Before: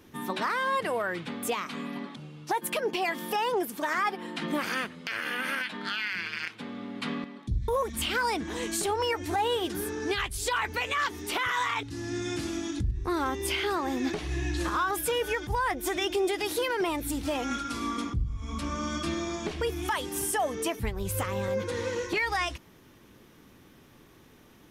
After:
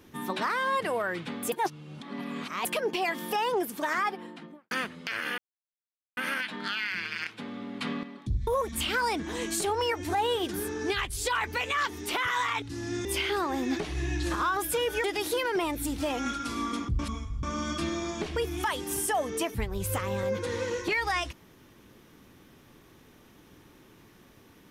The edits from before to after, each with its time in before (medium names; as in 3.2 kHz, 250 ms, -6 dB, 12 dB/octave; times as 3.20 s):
1.52–2.65 s: reverse
3.94–4.71 s: studio fade out
5.38 s: insert silence 0.79 s
12.26–13.39 s: delete
15.38–16.29 s: delete
18.24–18.68 s: reverse